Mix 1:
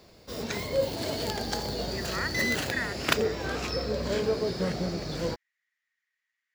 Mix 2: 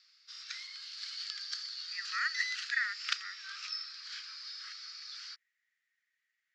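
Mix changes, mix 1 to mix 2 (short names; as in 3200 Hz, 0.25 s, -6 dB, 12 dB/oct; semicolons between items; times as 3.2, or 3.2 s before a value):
background: add ladder low-pass 5800 Hz, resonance 55%; master: add steep high-pass 1200 Hz 96 dB/oct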